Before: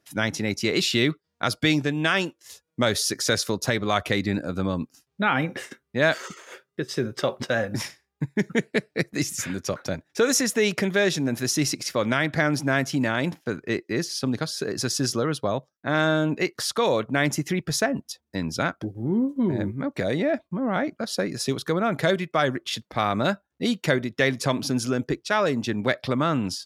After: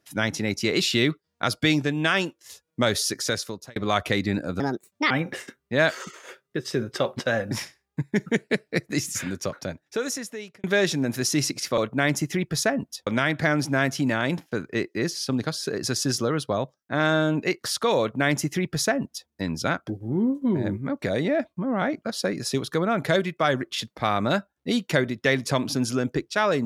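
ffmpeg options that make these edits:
-filter_complex "[0:a]asplit=7[a][b][c][d][e][f][g];[a]atrim=end=3.76,asetpts=PTS-STARTPTS,afade=t=out:st=2.81:d=0.95:c=qsin[h];[b]atrim=start=3.76:end=4.604,asetpts=PTS-STARTPTS,afade=t=in:d=0.004:c=hsin[i];[c]atrim=start=4.6:end=5.34,asetpts=PTS-STARTPTS,asetrate=64386,aresample=44100,atrim=end_sample=22352,asetpts=PTS-STARTPTS[j];[d]atrim=start=5.336:end=10.87,asetpts=PTS-STARTPTS,afade=t=out:st=4.174:d=1.36[k];[e]atrim=start=10.87:end=12.012,asetpts=PTS-STARTPTS,afade=t=in:d=0.004:c=hsin[l];[f]atrim=start=16.938:end=18.232[m];[g]atrim=start=12.008[n];[h][i]concat=n=2:v=0:a=1[o];[o][j]acrossfade=d=0.004:c1=hsin:c2=hsin[p];[k][l]concat=n=2:v=0:a=1[q];[p][q]acrossfade=d=0.004:c1=hsin:c2=hsin[r];[r][m]acrossfade=d=0.004:c1=hsin:c2=hsin[s];[s][n]acrossfade=d=0.004:c1=hsin:c2=hsin"

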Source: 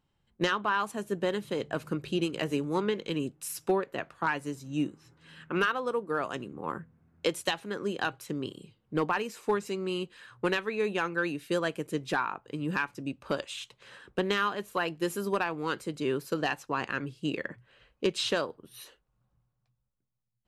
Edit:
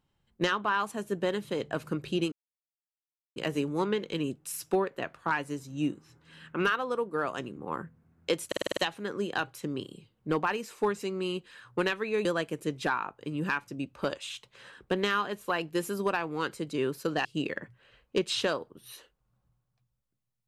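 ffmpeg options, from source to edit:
-filter_complex "[0:a]asplit=10[a][b][c][d][e][f][g][h][i][j];[a]atrim=end=2.32,asetpts=PTS-STARTPTS,afade=t=out:st=2.316:d=0.004:c=hsin,apad=pad_dur=1.04[k];[b]atrim=start=2.32:end=7.482,asetpts=PTS-STARTPTS,afade=t=in:d=0.004:c=hsin[l];[c]atrim=start=7.428:end=7.482[m];[d]atrim=start=7.428:end=7.482[n];[e]atrim=start=7.428:end=7.482[o];[f]atrim=start=7.428:end=7.482[p];[g]atrim=start=7.428:end=7.482[q];[h]atrim=start=7.428:end=10.912[r];[i]atrim=start=11.518:end=16.522[s];[j]atrim=start=17.128[t];[k][l]concat=n=2:v=0:a=1[u];[u][m]acrossfade=d=0.004:c1=hsin:c2=hsin[v];[v][n]acrossfade=d=0.004:c1=hsin:c2=hsin[w];[w][o]acrossfade=d=0.004:c1=hsin:c2=hsin[x];[x][p]acrossfade=d=0.004:c1=hsin:c2=hsin[y];[y][q]acrossfade=d=0.004:c1=hsin:c2=hsin[z];[z][r]acrossfade=d=0.004:c1=hsin:c2=hsin[aa];[aa][s]acrossfade=d=0.004:c1=hsin:c2=hsin[ab];[ab][t]acrossfade=d=0.004:c1=hsin:c2=hsin"

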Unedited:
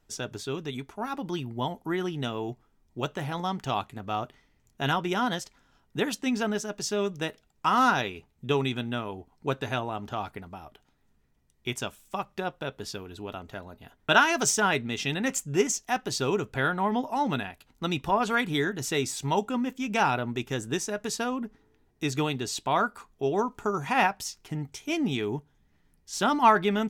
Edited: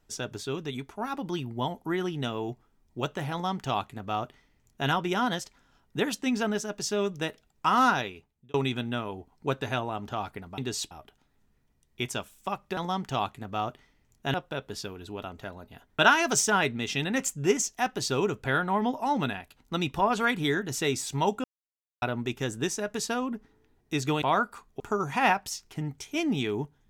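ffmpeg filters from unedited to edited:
-filter_complex "[0:a]asplit=10[a][b][c][d][e][f][g][h][i][j];[a]atrim=end=8.54,asetpts=PTS-STARTPTS,afade=t=out:st=7.85:d=0.69[k];[b]atrim=start=8.54:end=10.582,asetpts=PTS-STARTPTS,afade=t=in:d=0.004:c=hsin[l];[c]atrim=start=22.318:end=22.652[m];[d]atrim=start=10.578:end=12.442[n];[e]atrim=start=3.318:end=4.892[o];[f]atrim=start=12.438:end=19.54,asetpts=PTS-STARTPTS,afade=t=out:st=7.098:d=0.004:c=hsin[p];[g]atrim=start=19.54:end=20.12,asetpts=PTS-STARTPTS,volume=0[q];[h]atrim=start=20.12:end=22.322,asetpts=PTS-STARTPTS,afade=t=in:d=0.004:c=hsin[r];[i]atrim=start=22.648:end=23.232[s];[j]atrim=start=23.538[t];[k][l]concat=n=2:v=0:a=1[u];[u][m]acrossfade=d=0.004:c1=hsin:c2=hsin[v];[v][n]acrossfade=d=0.004:c1=hsin:c2=hsin[w];[w][o]acrossfade=d=0.004:c1=hsin:c2=hsin[x];[p][q][r]concat=n=3:v=0:a=1[y];[x][y]acrossfade=d=0.004:c1=hsin:c2=hsin[z];[z][s]acrossfade=d=0.004:c1=hsin:c2=hsin[aa];[aa][t]acrossfade=d=0.004:c1=hsin:c2=hsin"

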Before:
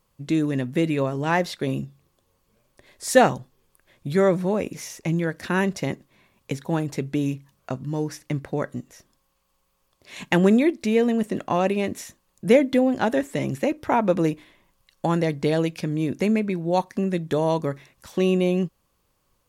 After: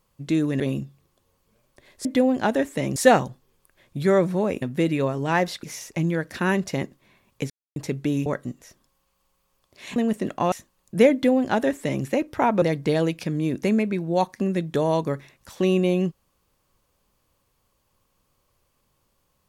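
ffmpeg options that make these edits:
-filter_complex "[0:a]asplit=12[a][b][c][d][e][f][g][h][i][j][k][l];[a]atrim=end=0.602[m];[b]atrim=start=1.608:end=3.062[n];[c]atrim=start=12.628:end=13.542[o];[d]atrim=start=3.058:end=4.722[p];[e]atrim=start=0.598:end=1.612[q];[f]atrim=start=4.718:end=6.59,asetpts=PTS-STARTPTS,afade=t=out:st=1.868:d=0.004:c=hsin[r];[g]atrim=start=6.59:end=6.85,asetpts=PTS-STARTPTS,volume=0[s];[h]atrim=start=6.85:end=7.352,asetpts=PTS-STARTPTS,afade=t=in:d=0.004:c=hsin[t];[i]atrim=start=8.548:end=10.252[u];[j]atrim=start=11.058:end=11.622[v];[k]atrim=start=12.018:end=14.122[w];[l]atrim=start=15.188[x];[m][n]acrossfade=d=0.004:c1=hsin:c2=hsin[y];[y][o]acrossfade=d=0.004:c1=hsin:c2=hsin[z];[z][p]acrossfade=d=0.004:c1=hsin:c2=hsin[aa];[aa][q]acrossfade=d=0.004:c1=hsin:c2=hsin[ab];[r][s][t]concat=n=3:v=0:a=1[ac];[ab][ac]acrossfade=d=0.004:c1=hsin:c2=hsin[ad];[ad][u]acrossfade=d=0.004:c1=hsin:c2=hsin[ae];[ae][v]acrossfade=d=0.004:c1=hsin:c2=hsin[af];[af][w]acrossfade=d=0.004:c1=hsin:c2=hsin[ag];[ag][x]acrossfade=d=0.004:c1=hsin:c2=hsin"

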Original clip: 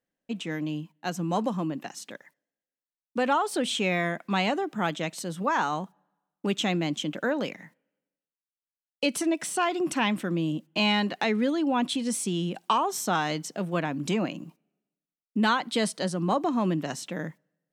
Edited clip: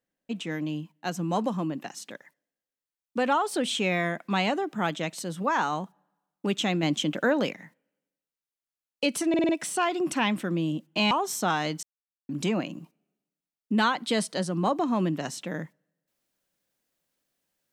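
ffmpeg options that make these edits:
-filter_complex "[0:a]asplit=10[a][b][c][d][e][f][g][h][i][j];[a]atrim=end=6.832[k];[b]atrim=start=6.828:end=7.522,asetpts=PTS-STARTPTS,volume=3.5dB[l];[c]atrim=start=7.518:end=9.342[m];[d]atrim=start=9.288:end=9.342[n];[e]atrim=start=9.288:end=9.342[o];[f]atrim=start=9.288:end=9.342[p];[g]atrim=start=9.288:end=10.912[q];[h]atrim=start=12.758:end=13.48,asetpts=PTS-STARTPTS,afade=t=out:st=0.718:d=0.004:c=hsin[r];[i]atrim=start=13.48:end=13.94,asetpts=PTS-STARTPTS,volume=0[s];[j]atrim=start=13.94,asetpts=PTS-STARTPTS,afade=t=in:d=0.004:c=hsin[t];[k][l]acrossfade=d=0.004:c1=hsin:c2=hsin[u];[u][m]acrossfade=d=0.004:c1=hsin:c2=hsin[v];[v][n]acrossfade=d=0.004:c1=hsin:c2=hsin[w];[w][o]acrossfade=d=0.004:c1=hsin:c2=hsin[x];[x][p]acrossfade=d=0.004:c1=hsin:c2=hsin[y];[y][q]acrossfade=d=0.004:c1=hsin:c2=hsin[z];[r][s][t]concat=n=3:v=0:a=1[aa];[z][aa]acrossfade=d=0.004:c1=hsin:c2=hsin"

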